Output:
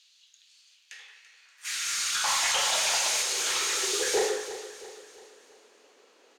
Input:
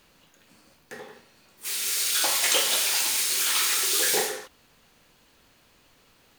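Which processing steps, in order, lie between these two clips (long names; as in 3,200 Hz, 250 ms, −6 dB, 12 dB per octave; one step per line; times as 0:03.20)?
elliptic high-pass filter 200 Hz
parametric band 6,600 Hz +7 dB 0.51 octaves
brickwall limiter −13 dBFS, peak gain reduction 7 dB
0:02.27–0:03.22: leveller curve on the samples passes 1
high-pass filter sweep 3,700 Hz → 410 Hz, 0:00.54–0:03.52
soft clipping −16 dBFS, distortion −19 dB
high-frequency loss of the air 59 metres
repeating echo 336 ms, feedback 47%, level −13 dB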